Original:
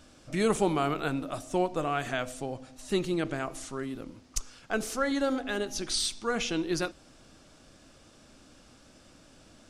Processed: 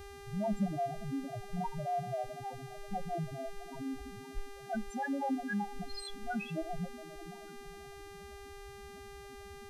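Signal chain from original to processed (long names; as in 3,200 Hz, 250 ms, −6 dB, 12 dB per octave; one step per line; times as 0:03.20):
lower of the sound and its delayed copy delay 1.2 ms
in parallel at −7 dB: hard clipping −30.5 dBFS, distortion −10 dB
on the sum: downward compressor 1.5 to 1, threshold −47 dBFS, peak gain reduction 8.5 dB
on a send: feedback delay with all-pass diffusion 519 ms, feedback 50%, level −11 dB
on the sum: spectral peaks only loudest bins 2
hum with harmonics 400 Hz, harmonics 35, −58 dBFS −6 dB per octave
tuned comb filter 69 Hz, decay 0.17 s, harmonics odd, mix 40%
level +11 dB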